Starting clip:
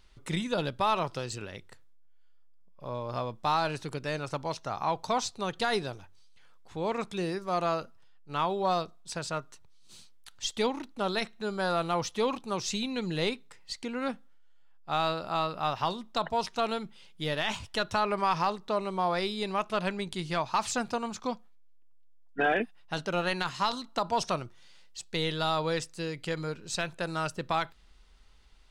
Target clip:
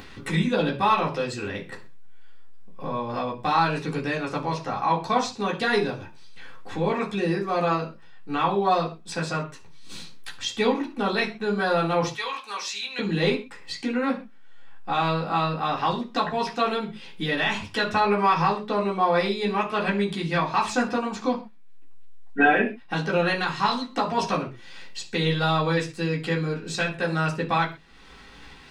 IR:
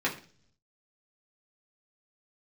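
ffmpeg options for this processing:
-filter_complex "[0:a]asettb=1/sr,asplit=3[a][b][c];[a]atrim=end=12.154[d];[b]atrim=start=12.15:end=12.99,asetpts=PTS-STARTPTS,afade=t=in:d=0.004:c=qsin,afade=t=out:st=0.836:d=0.004:c=qsin,highpass=1.4k[e];[c]atrim=start=12.986[f];[d][e]acrossfade=d=0.004:c1=hsin:c2=qsin[g];[g][f]acrossfade=d=0.004:c1=qsin:c2=hsin,acompressor=mode=upward:threshold=-30dB:ratio=2.5[h];[1:a]atrim=start_sample=2205,atrim=end_sample=6615[i];[h][i]afir=irnorm=-1:irlink=0,volume=-2.5dB"

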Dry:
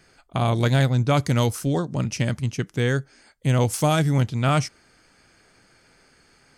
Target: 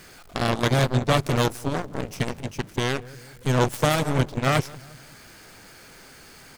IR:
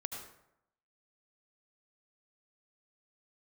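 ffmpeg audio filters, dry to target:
-filter_complex "[0:a]aeval=exprs='val(0)+0.5*0.0168*sgn(val(0))':c=same,asplit=2[a][b];[b]adelay=178,lowpass=f=1.3k:p=1,volume=-11.5dB,asplit=2[c][d];[d]adelay=178,lowpass=f=1.3k:p=1,volume=0.45,asplit=2[e][f];[f]adelay=178,lowpass=f=1.3k:p=1,volume=0.45,asplit=2[g][h];[h]adelay=178,lowpass=f=1.3k:p=1,volume=0.45,asplit=2[i][j];[j]adelay=178,lowpass=f=1.3k:p=1,volume=0.45[k];[a][c][e][g][i][k]amix=inputs=6:normalize=0,aeval=exprs='0.398*(cos(1*acos(clip(val(0)/0.398,-1,1)))-cos(1*PI/2))+0.141*(cos(2*acos(clip(val(0)/0.398,-1,1)))-cos(2*PI/2))+0.0251*(cos(3*acos(clip(val(0)/0.398,-1,1)))-cos(3*PI/2))+0.0708*(cos(7*acos(clip(val(0)/0.398,-1,1)))-cos(7*PI/2))+0.0224*(cos(8*acos(clip(val(0)/0.398,-1,1)))-cos(8*PI/2))':c=same"

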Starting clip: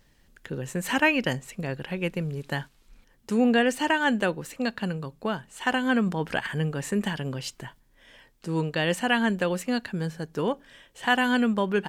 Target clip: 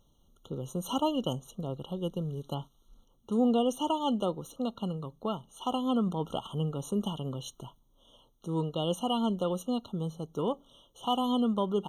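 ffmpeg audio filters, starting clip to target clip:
-filter_complex "[0:a]asettb=1/sr,asplit=3[a][b][c];[a]atrim=end=2.544[d];[b]atrim=start=2.54:end=3.32,asetpts=PTS-STARTPTS,afade=t=in:d=0.004:c=qsin,afade=t=out:st=0.776:d=0.004:c=qsin,acrossover=split=3700[e][f];[f]acompressor=threshold=-59dB:ratio=4:attack=1:release=60[g];[e][g]amix=inputs=2:normalize=0[h];[c]atrim=start=3.316[i];[d][h]acrossfade=d=0.004:c1=hsin:c2=qsin[j];[j][i]acrossfade=d=0.004:c1=qsin:c2=hsin,afftfilt=real='re*eq(mod(floor(b*sr/1024/1400),2),0)':imag='im*eq(mod(floor(b*sr/1024/1400),2),0)':win_size=1024:overlap=0.75,volume=-4dB"

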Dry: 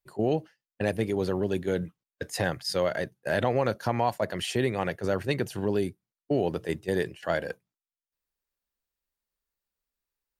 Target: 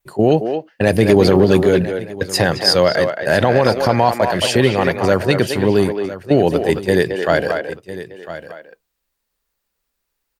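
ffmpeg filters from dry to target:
-filter_complex "[0:a]asplit=2[a][b];[b]aecho=0:1:1003:0.188[c];[a][c]amix=inputs=2:normalize=0,asettb=1/sr,asplit=3[d][e][f];[d]atrim=end=0.874[g];[e]atrim=start=0.87:end=1.67,asetpts=PTS-STARTPTS,afade=t=in:d=0.004:c=qsin,afade=t=out:st=0.796:d=0.004:c=qsin,acontrast=55[h];[f]atrim=start=1.666[i];[g][h]acrossfade=d=0.004:c1=hsin:c2=qsin[j];[j][i]acrossfade=d=0.004:c1=qsin:c2=hsin,asplit=2[k][l];[l]adelay=220,highpass=300,lowpass=3.4k,asoftclip=type=hard:threshold=-17.5dB,volume=-6dB[m];[k][m]amix=inputs=2:normalize=0,adynamicequalizer=threshold=0.00126:dfrequency=4800:dqfactor=6.9:tfrequency=4800:tqfactor=6.9:attack=5:release=100:ratio=0.375:range=4:mode=boostabove:tftype=bell,alimiter=level_in=13.5dB:limit=-1dB:release=50:level=0:latency=1,volume=-1dB"

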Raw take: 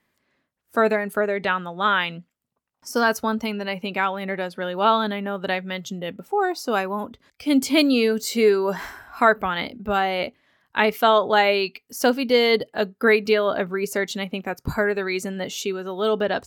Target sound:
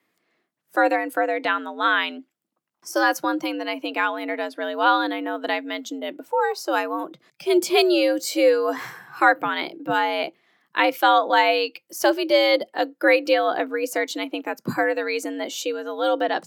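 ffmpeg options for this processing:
-af "afreqshift=89"

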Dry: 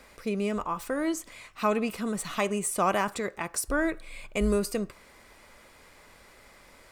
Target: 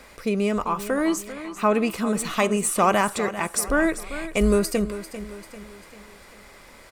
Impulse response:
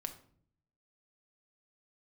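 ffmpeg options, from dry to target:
-filter_complex "[0:a]asettb=1/sr,asplit=3[a][b][c];[a]atrim=end=1.324[d];[b]atrim=start=1.32:end=1.74,asetpts=PTS-STARTPTS,afade=t=in:d=0.004:c=qsin,afade=t=out:st=0.416:d=0.004:c=qsin,lowpass=f=2.1k:p=1[e];[c]atrim=start=1.736[f];[d][e]acrossfade=d=0.004:c1=hsin:c2=qsin[g];[g][f]acrossfade=d=0.004:c1=qsin:c2=hsin,aecho=1:1:394|788|1182|1576|1970:0.224|0.103|0.0474|0.0218|0.01,volume=6dB"

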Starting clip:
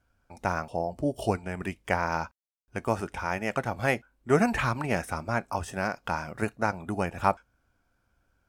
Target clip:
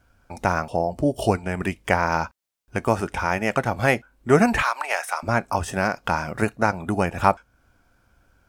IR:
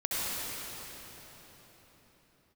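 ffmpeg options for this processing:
-filter_complex "[0:a]asettb=1/sr,asplit=3[a][b][c];[a]atrim=end=4.624[d];[b]atrim=start=4.62:end=5.23,asetpts=PTS-STARTPTS,afade=t=in:d=0.004:c=qsin,afade=t=out:st=0.606:d=0.004:c=qsin,highpass=f=670:w=0.5412,highpass=f=670:w=1.3066[e];[c]atrim=start=5.226[f];[d][e]acrossfade=d=0.004:c1=hsin:c2=qsin[g];[g][f]acrossfade=d=0.004:c1=qsin:c2=hsin,asplit=2[h][i];[i]acompressor=threshold=-37dB:ratio=6,volume=-1dB[j];[h][j]amix=inputs=2:normalize=0,volume=5dB"

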